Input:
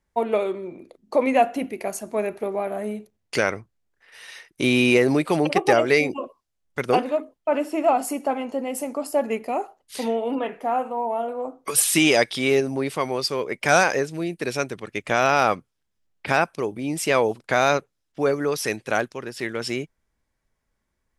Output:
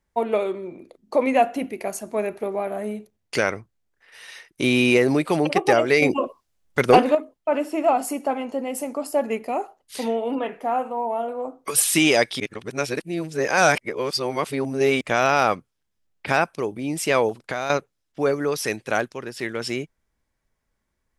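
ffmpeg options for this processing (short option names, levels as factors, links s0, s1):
-filter_complex "[0:a]asettb=1/sr,asplit=3[s0][s1][s2];[s0]atrim=end=6.024[s3];[s1]atrim=start=6.02:end=7.15,asetpts=PTS-STARTPTS,afade=t=in:d=0.004:c=qsin,afade=t=out:st=1.126:d=0.004:c=qsin,acontrast=89[s4];[s2]atrim=start=7.146[s5];[s3][s4]acrossfade=d=0.004:c1=hsin:c2=qsin[s6];[s6][s5]acrossfade=d=0.004:c1=qsin:c2=hsin,asettb=1/sr,asplit=3[s7][s8][s9];[s7]atrim=end=17.294[s10];[s8]atrim=start=17.29:end=17.7,asetpts=PTS-STARTPTS,afade=t=in:d=0.004:c=qsin,afade=t=out:st=0.406:d=0.004:c=qsin,acompressor=threshold=0.0631:ratio=3:attack=3.2:release=140:knee=1:detection=peak[s11];[s9]atrim=start=17.696[s12];[s10][s11]acrossfade=d=0.004:c1=hsin:c2=qsin[s13];[s13][s12]acrossfade=d=0.004:c1=qsin:c2=hsin,asplit=3[s14][s15][s16];[s14]atrim=end=12.402[s17];[s15]atrim=start=12.398:end=15.012,asetpts=PTS-STARTPTS,areverse[s18];[s16]atrim=start=15.008[s19];[s17][s18]acrossfade=d=0.004:c1=hsin:c2=hsin[s20];[s20][s19]acrossfade=d=0.004:c1=hsin:c2=hsin"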